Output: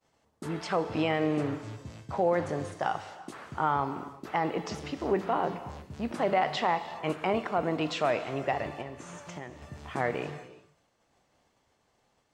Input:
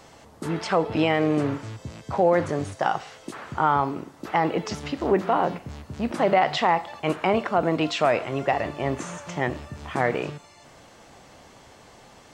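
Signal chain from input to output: expander -39 dBFS; 8.81–9.62 compressor 6:1, threshold -32 dBFS, peak gain reduction 12.5 dB; non-linear reverb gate 0.39 s flat, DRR 12 dB; gain -6.5 dB

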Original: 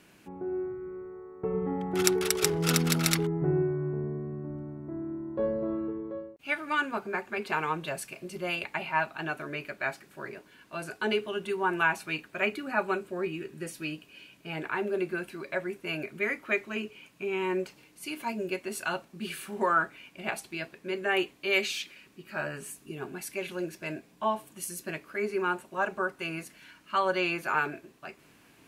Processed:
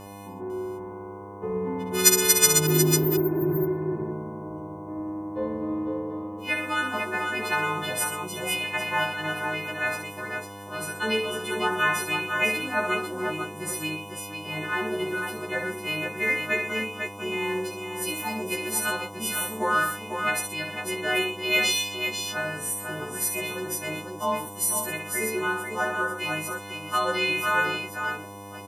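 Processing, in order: frequency quantiser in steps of 3 st; spectral repair 2.69–3.58, 340–12000 Hz after; buzz 100 Hz, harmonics 11, -43 dBFS -2 dB/oct; tapped delay 64/121/498 ms -6/-11.5/-6 dB

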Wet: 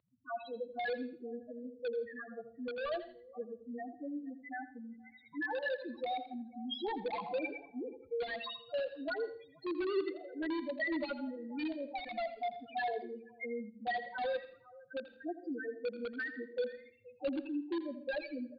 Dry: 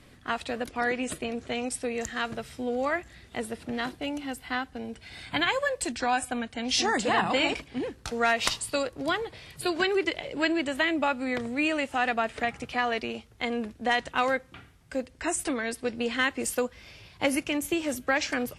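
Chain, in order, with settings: loudest bins only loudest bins 2; HPF 360 Hz 12 dB/oct; echo 0.475 s -24 dB; in parallel at -8 dB: wrapped overs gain 29 dB; on the sum: Chebyshev low-pass 4500 Hz, order 8; feedback echo 83 ms, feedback 27%, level -12.5 dB; on a send at -18 dB: reverb RT60 0.40 s, pre-delay 0.114 s; on the sum: cascading phaser rising 0.82 Hz; gain -2 dB

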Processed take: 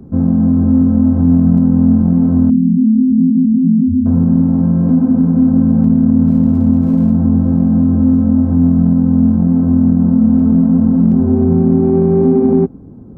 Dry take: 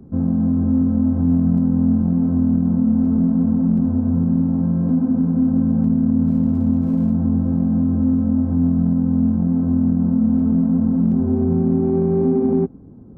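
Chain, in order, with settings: 2.5–4.06 spectral contrast raised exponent 3.2; gain +6.5 dB

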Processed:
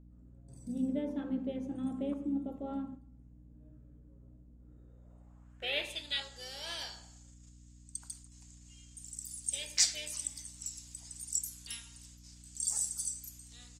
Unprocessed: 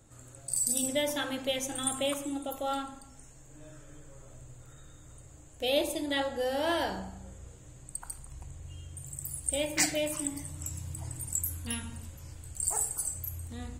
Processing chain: gate -45 dBFS, range -8 dB; band-pass sweep 220 Hz -> 5400 Hz, 4.55–6.25; hum 60 Hz, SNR 16 dB; harmoniser -5 st -12 dB; gain +5.5 dB

